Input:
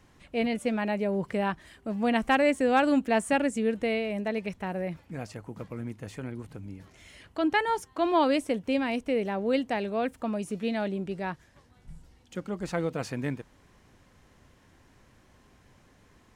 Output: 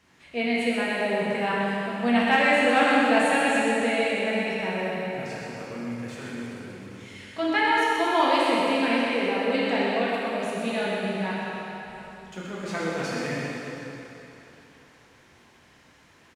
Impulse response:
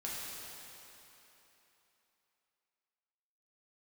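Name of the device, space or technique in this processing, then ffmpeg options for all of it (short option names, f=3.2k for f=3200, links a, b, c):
PA in a hall: -filter_complex "[0:a]highpass=f=140:p=1,equalizer=f=2.9k:t=o:w=2.6:g=6.5,aecho=1:1:126:0.473[a];[1:a]atrim=start_sample=2205[b];[a][b]afir=irnorm=-1:irlink=0"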